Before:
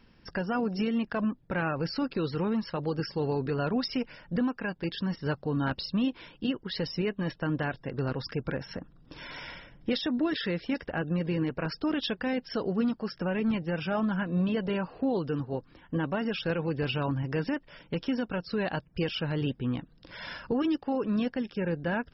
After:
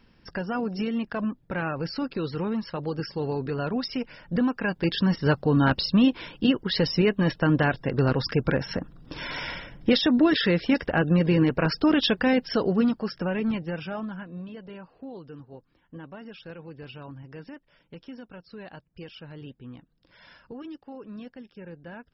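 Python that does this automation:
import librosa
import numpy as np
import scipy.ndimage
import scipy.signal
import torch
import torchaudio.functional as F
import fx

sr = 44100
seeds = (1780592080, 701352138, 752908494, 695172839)

y = fx.gain(x, sr, db=fx.line((3.97, 0.5), (4.95, 8.5), (12.31, 8.5), (13.68, 0.0), (14.49, -12.0)))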